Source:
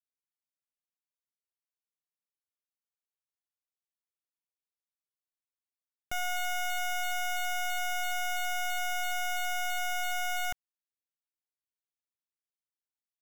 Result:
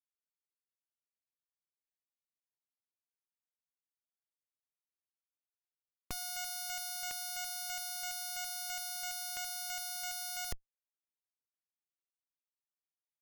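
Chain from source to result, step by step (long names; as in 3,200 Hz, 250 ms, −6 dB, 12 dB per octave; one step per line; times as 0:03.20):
brick-wall band-stop 300–2,000 Hz
tempo change 1×
comparator with hysteresis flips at −53.5 dBFS
level +3.5 dB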